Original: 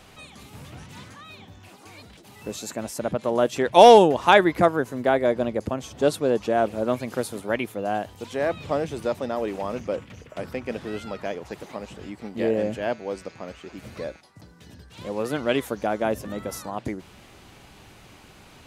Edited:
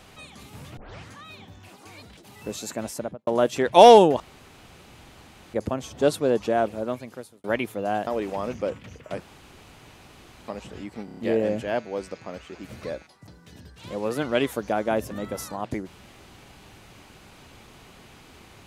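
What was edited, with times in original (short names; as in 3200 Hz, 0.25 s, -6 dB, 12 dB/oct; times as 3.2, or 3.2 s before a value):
0.77 tape start 0.32 s
2.9–3.27 studio fade out
4.2–5.54 room tone
6.47–7.44 fade out
8.07–9.33 cut
10.46–11.74 room tone
12.31 stutter 0.03 s, 5 plays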